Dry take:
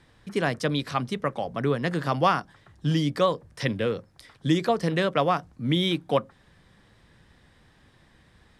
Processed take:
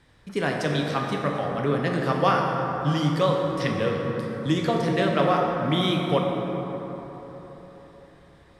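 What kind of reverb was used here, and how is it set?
plate-style reverb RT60 4.2 s, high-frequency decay 0.4×, DRR -1 dB; trim -1.5 dB

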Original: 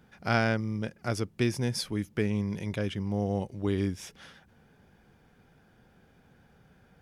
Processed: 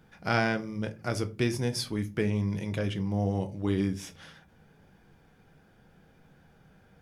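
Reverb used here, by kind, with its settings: simulated room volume 130 m³, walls furnished, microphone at 0.6 m

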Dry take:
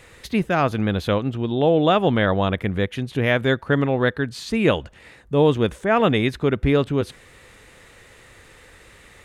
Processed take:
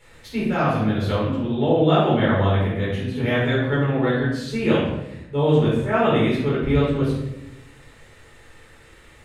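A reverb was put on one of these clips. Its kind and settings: simulated room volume 310 m³, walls mixed, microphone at 4.3 m; trim -13 dB

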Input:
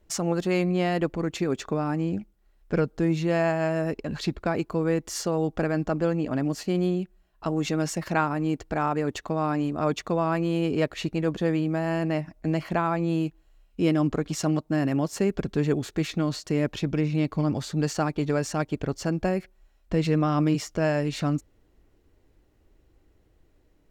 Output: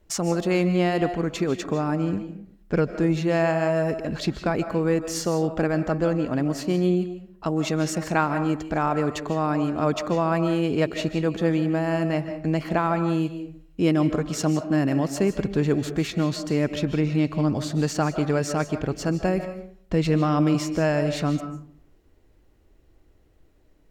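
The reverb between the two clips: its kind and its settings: algorithmic reverb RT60 0.58 s, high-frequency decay 0.55×, pre-delay 110 ms, DRR 9.5 dB; trim +2 dB

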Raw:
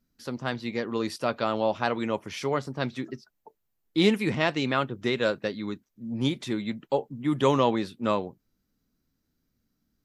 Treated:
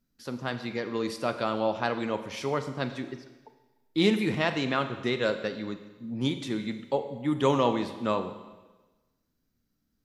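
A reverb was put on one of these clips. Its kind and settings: Schroeder reverb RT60 1.2 s, combs from 33 ms, DRR 9 dB; trim -2 dB

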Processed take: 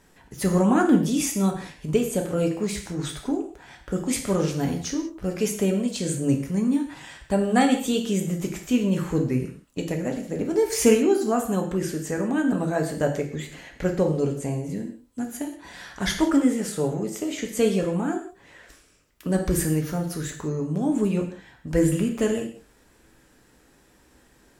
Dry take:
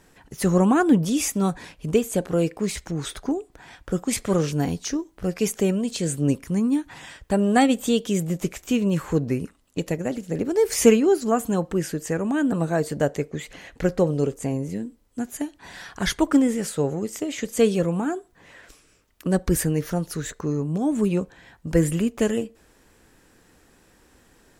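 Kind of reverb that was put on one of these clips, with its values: gated-style reverb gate 210 ms falling, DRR 2.5 dB; trim -3 dB

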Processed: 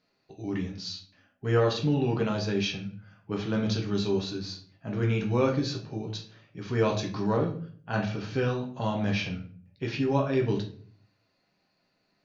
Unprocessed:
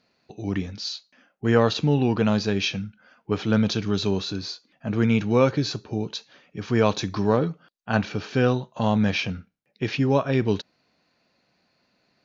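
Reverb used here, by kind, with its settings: simulated room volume 47 m³, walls mixed, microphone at 0.58 m; trim -8 dB

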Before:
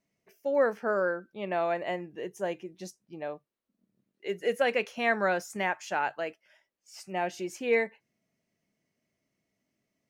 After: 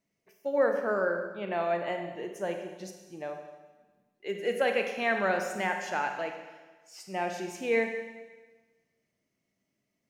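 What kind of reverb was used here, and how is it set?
Schroeder reverb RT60 1.3 s, combs from 31 ms, DRR 4.5 dB; trim -1.5 dB

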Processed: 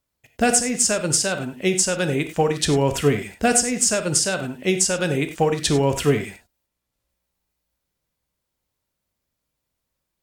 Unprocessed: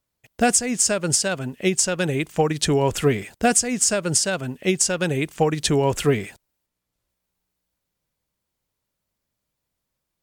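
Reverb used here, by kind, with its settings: gated-style reverb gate 120 ms flat, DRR 7 dB

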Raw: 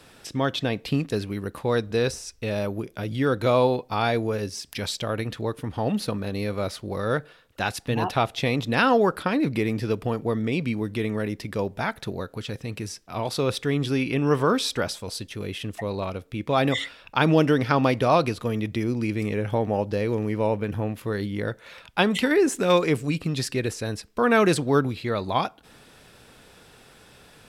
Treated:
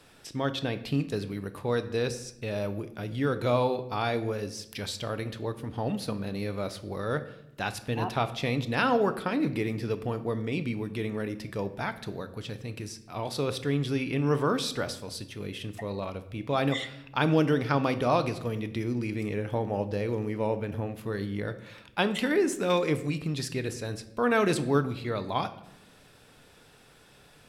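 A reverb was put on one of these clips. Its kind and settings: simulated room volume 250 m³, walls mixed, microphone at 0.34 m; trim -5.5 dB

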